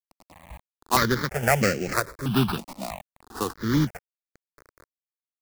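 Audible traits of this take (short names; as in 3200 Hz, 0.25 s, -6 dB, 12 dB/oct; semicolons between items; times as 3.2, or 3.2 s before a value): aliases and images of a low sample rate 3200 Hz, jitter 20%; random-step tremolo, depth 55%; a quantiser's noise floor 8-bit, dither none; notches that jump at a steady rate 3.1 Hz 430–3600 Hz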